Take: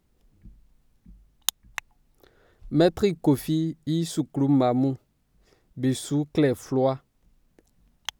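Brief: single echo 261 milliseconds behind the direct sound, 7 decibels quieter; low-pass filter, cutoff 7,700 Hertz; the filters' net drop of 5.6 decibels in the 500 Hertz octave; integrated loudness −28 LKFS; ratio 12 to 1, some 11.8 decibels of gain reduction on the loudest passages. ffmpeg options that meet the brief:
ffmpeg -i in.wav -af "lowpass=7700,equalizer=frequency=500:width_type=o:gain=-7.5,acompressor=threshold=-29dB:ratio=12,aecho=1:1:261:0.447,volume=7dB" out.wav

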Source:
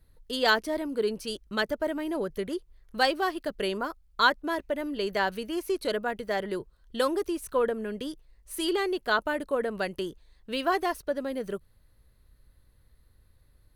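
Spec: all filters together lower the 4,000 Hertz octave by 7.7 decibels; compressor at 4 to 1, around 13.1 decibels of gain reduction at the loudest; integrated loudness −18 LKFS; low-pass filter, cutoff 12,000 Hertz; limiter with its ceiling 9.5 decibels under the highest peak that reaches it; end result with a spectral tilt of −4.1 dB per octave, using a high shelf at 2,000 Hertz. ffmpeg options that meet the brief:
ffmpeg -i in.wav -af "lowpass=12000,highshelf=frequency=2000:gain=-6,equalizer=frequency=4000:width_type=o:gain=-4,acompressor=threshold=-36dB:ratio=4,volume=24.5dB,alimiter=limit=-8dB:level=0:latency=1" out.wav

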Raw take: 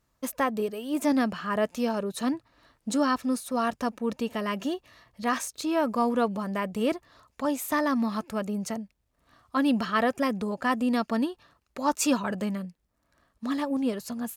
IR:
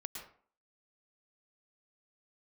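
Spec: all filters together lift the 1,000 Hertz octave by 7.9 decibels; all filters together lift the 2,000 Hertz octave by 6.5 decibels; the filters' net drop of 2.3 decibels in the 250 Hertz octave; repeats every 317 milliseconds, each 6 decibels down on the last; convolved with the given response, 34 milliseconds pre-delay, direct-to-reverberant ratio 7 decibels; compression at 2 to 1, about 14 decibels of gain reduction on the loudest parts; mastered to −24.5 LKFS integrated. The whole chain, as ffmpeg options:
-filter_complex "[0:a]equalizer=frequency=250:width_type=o:gain=-3,equalizer=frequency=1000:width_type=o:gain=8.5,equalizer=frequency=2000:width_type=o:gain=5,acompressor=threshold=-41dB:ratio=2,aecho=1:1:317|634|951|1268|1585|1902:0.501|0.251|0.125|0.0626|0.0313|0.0157,asplit=2[link_01][link_02];[1:a]atrim=start_sample=2205,adelay=34[link_03];[link_02][link_03]afir=irnorm=-1:irlink=0,volume=-5dB[link_04];[link_01][link_04]amix=inputs=2:normalize=0,volume=10.5dB"

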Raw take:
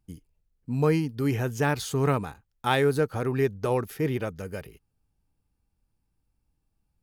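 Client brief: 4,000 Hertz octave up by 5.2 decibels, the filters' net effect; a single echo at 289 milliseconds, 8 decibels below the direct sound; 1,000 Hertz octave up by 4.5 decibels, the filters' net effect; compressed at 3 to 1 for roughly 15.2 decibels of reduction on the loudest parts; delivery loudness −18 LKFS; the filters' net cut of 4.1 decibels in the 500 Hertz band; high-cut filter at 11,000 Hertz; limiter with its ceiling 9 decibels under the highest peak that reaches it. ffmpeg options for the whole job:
ffmpeg -i in.wav -af "lowpass=11000,equalizer=frequency=500:width_type=o:gain=-6.5,equalizer=frequency=1000:width_type=o:gain=7.5,equalizer=frequency=4000:width_type=o:gain=6,acompressor=threshold=-37dB:ratio=3,alimiter=level_in=6dB:limit=-24dB:level=0:latency=1,volume=-6dB,aecho=1:1:289:0.398,volume=22dB" out.wav

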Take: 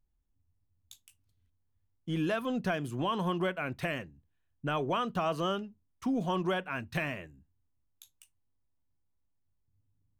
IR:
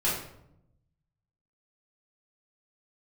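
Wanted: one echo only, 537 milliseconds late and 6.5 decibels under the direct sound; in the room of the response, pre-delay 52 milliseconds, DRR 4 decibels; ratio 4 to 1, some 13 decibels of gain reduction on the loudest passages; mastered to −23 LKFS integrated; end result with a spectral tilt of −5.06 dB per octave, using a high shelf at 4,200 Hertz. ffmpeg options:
-filter_complex "[0:a]highshelf=frequency=4200:gain=9,acompressor=threshold=-43dB:ratio=4,aecho=1:1:537:0.473,asplit=2[link_01][link_02];[1:a]atrim=start_sample=2205,adelay=52[link_03];[link_02][link_03]afir=irnorm=-1:irlink=0,volume=-14.5dB[link_04];[link_01][link_04]amix=inputs=2:normalize=0,volume=20dB"

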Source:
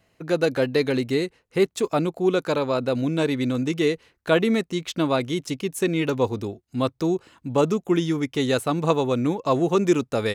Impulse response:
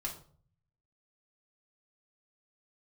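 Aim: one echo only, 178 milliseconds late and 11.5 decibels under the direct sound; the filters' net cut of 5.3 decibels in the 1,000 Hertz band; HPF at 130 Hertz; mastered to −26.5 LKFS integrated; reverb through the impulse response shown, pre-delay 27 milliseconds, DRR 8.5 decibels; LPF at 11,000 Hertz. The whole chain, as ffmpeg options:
-filter_complex "[0:a]highpass=130,lowpass=11000,equalizer=frequency=1000:width_type=o:gain=-7,aecho=1:1:178:0.266,asplit=2[link_01][link_02];[1:a]atrim=start_sample=2205,adelay=27[link_03];[link_02][link_03]afir=irnorm=-1:irlink=0,volume=-9dB[link_04];[link_01][link_04]amix=inputs=2:normalize=0,volume=-2.5dB"

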